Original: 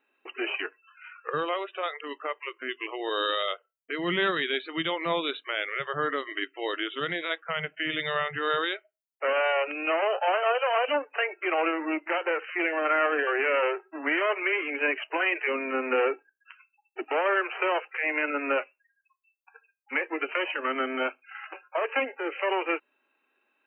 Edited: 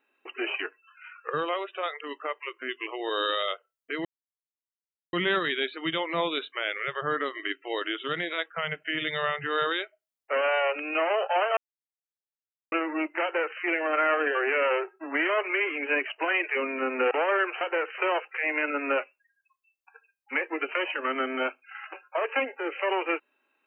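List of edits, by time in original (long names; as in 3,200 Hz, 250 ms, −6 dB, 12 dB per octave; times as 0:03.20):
0:04.05: splice in silence 1.08 s
0:10.49–0:11.64: silence
0:12.15–0:12.52: duplicate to 0:17.58
0:16.03–0:17.08: remove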